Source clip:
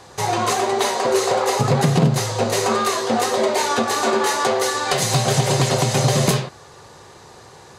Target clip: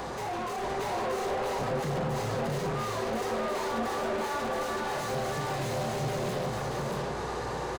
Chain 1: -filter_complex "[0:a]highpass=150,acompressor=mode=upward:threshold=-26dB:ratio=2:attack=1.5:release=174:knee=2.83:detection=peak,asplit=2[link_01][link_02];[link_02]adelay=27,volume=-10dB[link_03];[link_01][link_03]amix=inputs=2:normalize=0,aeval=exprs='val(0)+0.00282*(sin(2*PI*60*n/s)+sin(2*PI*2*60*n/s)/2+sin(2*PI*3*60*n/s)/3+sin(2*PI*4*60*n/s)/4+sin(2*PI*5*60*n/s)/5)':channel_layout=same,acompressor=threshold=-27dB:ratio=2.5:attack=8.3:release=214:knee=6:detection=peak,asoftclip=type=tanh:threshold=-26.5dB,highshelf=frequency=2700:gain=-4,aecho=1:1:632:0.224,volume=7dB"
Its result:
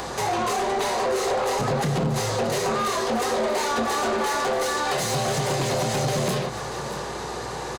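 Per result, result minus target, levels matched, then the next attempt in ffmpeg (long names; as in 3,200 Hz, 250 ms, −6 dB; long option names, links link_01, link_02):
echo-to-direct −11.5 dB; soft clipping: distortion −7 dB; 4,000 Hz band +3.0 dB
-filter_complex "[0:a]highpass=150,acompressor=mode=upward:threshold=-26dB:ratio=2:attack=1.5:release=174:knee=2.83:detection=peak,asplit=2[link_01][link_02];[link_02]adelay=27,volume=-10dB[link_03];[link_01][link_03]amix=inputs=2:normalize=0,aeval=exprs='val(0)+0.00282*(sin(2*PI*60*n/s)+sin(2*PI*2*60*n/s)/2+sin(2*PI*3*60*n/s)/3+sin(2*PI*4*60*n/s)/4+sin(2*PI*5*60*n/s)/5)':channel_layout=same,acompressor=threshold=-27dB:ratio=2.5:attack=8.3:release=214:knee=6:detection=peak,asoftclip=type=tanh:threshold=-26.5dB,highshelf=frequency=2700:gain=-4,aecho=1:1:632:0.841,volume=7dB"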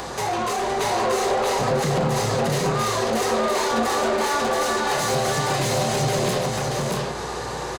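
soft clipping: distortion −7 dB; 4,000 Hz band +3.0 dB
-filter_complex "[0:a]highpass=150,acompressor=mode=upward:threshold=-26dB:ratio=2:attack=1.5:release=174:knee=2.83:detection=peak,asplit=2[link_01][link_02];[link_02]adelay=27,volume=-10dB[link_03];[link_01][link_03]amix=inputs=2:normalize=0,aeval=exprs='val(0)+0.00282*(sin(2*PI*60*n/s)+sin(2*PI*2*60*n/s)/2+sin(2*PI*3*60*n/s)/3+sin(2*PI*4*60*n/s)/4+sin(2*PI*5*60*n/s)/5)':channel_layout=same,acompressor=threshold=-27dB:ratio=2.5:attack=8.3:release=214:knee=6:detection=peak,asoftclip=type=tanh:threshold=-37.5dB,highshelf=frequency=2700:gain=-4,aecho=1:1:632:0.841,volume=7dB"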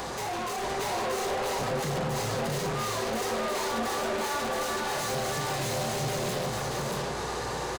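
4,000 Hz band +4.5 dB
-filter_complex "[0:a]highpass=150,acompressor=mode=upward:threshold=-26dB:ratio=2:attack=1.5:release=174:knee=2.83:detection=peak,asplit=2[link_01][link_02];[link_02]adelay=27,volume=-10dB[link_03];[link_01][link_03]amix=inputs=2:normalize=0,aeval=exprs='val(0)+0.00282*(sin(2*PI*60*n/s)+sin(2*PI*2*60*n/s)/2+sin(2*PI*3*60*n/s)/3+sin(2*PI*4*60*n/s)/4+sin(2*PI*5*60*n/s)/5)':channel_layout=same,acompressor=threshold=-27dB:ratio=2.5:attack=8.3:release=214:knee=6:detection=peak,asoftclip=type=tanh:threshold=-37.5dB,highshelf=frequency=2700:gain=-13,aecho=1:1:632:0.841,volume=7dB"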